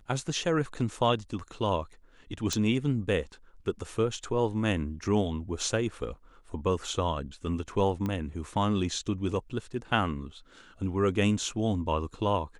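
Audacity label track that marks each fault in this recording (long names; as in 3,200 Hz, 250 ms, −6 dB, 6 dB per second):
2.530000	2.530000	click
8.060000	8.060000	click −20 dBFS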